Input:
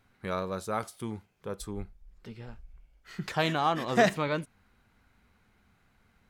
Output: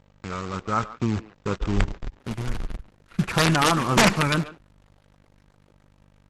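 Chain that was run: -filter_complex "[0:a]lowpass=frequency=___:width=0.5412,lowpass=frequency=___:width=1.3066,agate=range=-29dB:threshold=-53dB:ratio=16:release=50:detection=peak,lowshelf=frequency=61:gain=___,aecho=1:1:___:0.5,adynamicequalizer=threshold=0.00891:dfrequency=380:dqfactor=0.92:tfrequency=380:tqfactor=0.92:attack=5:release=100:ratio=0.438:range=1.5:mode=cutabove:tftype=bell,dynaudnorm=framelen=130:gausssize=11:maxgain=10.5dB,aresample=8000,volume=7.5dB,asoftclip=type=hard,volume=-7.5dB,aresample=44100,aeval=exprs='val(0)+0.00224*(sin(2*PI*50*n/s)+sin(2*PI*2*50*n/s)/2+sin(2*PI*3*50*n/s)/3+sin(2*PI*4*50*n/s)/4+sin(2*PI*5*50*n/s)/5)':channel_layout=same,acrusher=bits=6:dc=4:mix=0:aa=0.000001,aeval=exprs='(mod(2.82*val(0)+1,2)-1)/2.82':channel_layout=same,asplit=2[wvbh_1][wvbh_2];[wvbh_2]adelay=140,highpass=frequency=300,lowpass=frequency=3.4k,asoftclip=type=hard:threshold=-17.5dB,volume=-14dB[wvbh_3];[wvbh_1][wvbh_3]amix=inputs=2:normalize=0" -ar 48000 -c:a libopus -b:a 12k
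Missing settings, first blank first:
2.6k, 2.6k, 7.5, 0.8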